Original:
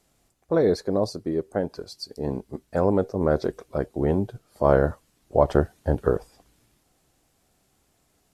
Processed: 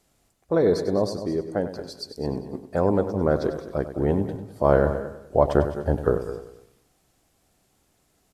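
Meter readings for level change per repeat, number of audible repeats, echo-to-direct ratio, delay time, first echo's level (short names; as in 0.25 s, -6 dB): no steady repeat, 4, -8.5 dB, 98 ms, -11.5 dB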